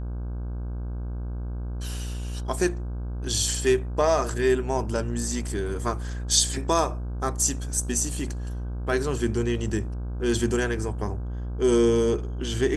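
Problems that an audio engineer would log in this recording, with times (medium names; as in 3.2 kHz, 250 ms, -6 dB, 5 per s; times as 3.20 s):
buzz 60 Hz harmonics 27 -31 dBFS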